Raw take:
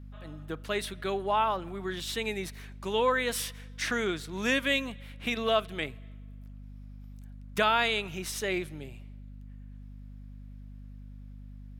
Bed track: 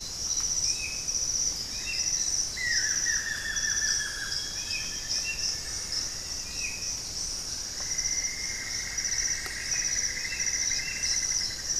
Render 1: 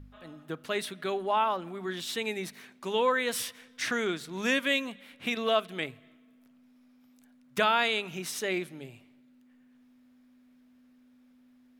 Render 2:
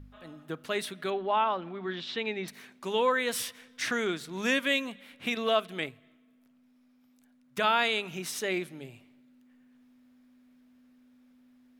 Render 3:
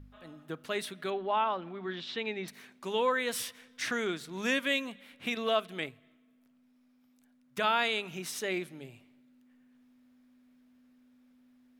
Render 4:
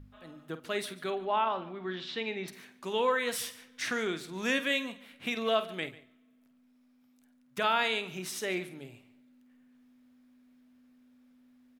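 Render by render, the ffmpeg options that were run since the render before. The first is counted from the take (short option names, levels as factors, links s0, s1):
-af "bandreject=f=50:t=h:w=4,bandreject=f=100:t=h:w=4,bandreject=f=150:t=h:w=4,bandreject=f=200:t=h:w=4"
-filter_complex "[0:a]asettb=1/sr,asplit=3[s0][s1][s2];[s0]atrim=end=1.104[s3];[s1]atrim=start=1.1:end=2.48,asetpts=PTS-STARTPTS,afade=t=in:d=0.004:c=qsin,afade=t=out:st=1.376:d=0.004:c=qsin,lowpass=f=4400:w=0.5412,lowpass=f=4400:w=1.3066[s4];[s2]atrim=start=2.476[s5];[s3][s4]acrossfade=d=0.004:c1=hsin:c2=qsin[s6];[s6][s5]acrossfade=d=0.004:c1=qsin:c2=hsin,asplit=3[s7][s8][s9];[s7]atrim=end=5.892[s10];[s8]atrim=start=5.888:end=7.642,asetpts=PTS-STARTPTS,volume=0.668[s11];[s9]atrim=start=7.638[s12];[s10][s11]acrossfade=d=0.004:c1=hsin:c2=hsin[s13];[s13][s12]acrossfade=d=0.004:c1=hsin:c2=hsin"
-af "volume=0.75"
-filter_complex "[0:a]asplit=2[s0][s1];[s1]adelay=49,volume=0.251[s2];[s0][s2]amix=inputs=2:normalize=0,aecho=1:1:144:0.112"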